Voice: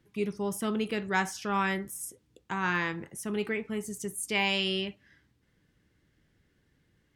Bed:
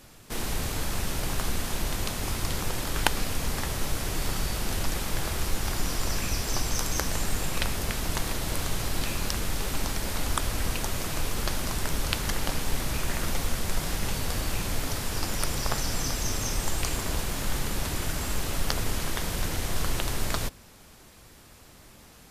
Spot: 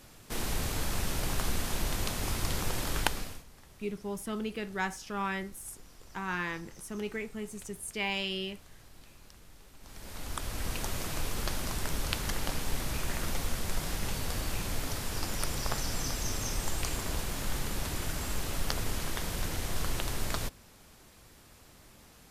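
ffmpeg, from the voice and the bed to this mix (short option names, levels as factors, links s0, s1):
-filter_complex "[0:a]adelay=3650,volume=0.562[s0];[1:a]volume=8.41,afade=t=out:st=2.93:d=0.51:silence=0.0707946,afade=t=in:st=9.8:d=1.07:silence=0.0891251[s1];[s0][s1]amix=inputs=2:normalize=0"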